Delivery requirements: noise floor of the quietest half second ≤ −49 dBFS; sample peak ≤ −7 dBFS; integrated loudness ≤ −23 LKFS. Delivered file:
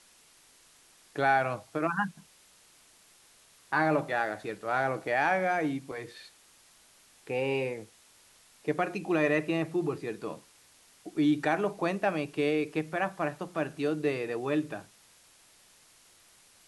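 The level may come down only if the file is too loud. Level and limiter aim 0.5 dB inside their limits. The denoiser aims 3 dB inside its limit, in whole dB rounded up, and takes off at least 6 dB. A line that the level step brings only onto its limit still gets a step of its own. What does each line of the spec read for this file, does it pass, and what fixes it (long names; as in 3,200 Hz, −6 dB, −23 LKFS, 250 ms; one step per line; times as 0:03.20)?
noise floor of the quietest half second −60 dBFS: in spec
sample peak −13.5 dBFS: in spec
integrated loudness −30.5 LKFS: in spec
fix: no processing needed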